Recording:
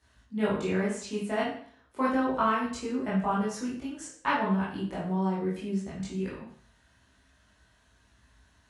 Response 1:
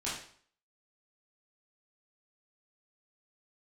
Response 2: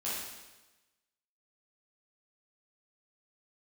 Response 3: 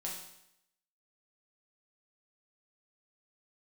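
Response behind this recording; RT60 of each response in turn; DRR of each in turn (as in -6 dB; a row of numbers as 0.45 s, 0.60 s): 1; 0.55 s, 1.1 s, 0.80 s; -9.0 dB, -9.5 dB, -3.5 dB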